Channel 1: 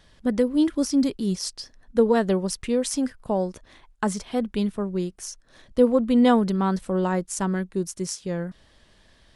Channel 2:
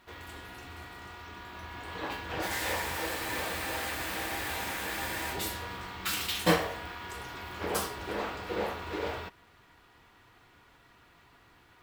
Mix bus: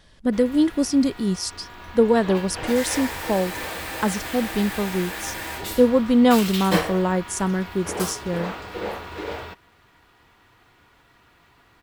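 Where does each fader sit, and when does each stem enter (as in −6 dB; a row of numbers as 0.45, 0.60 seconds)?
+2.0, +3.0 decibels; 0.00, 0.25 seconds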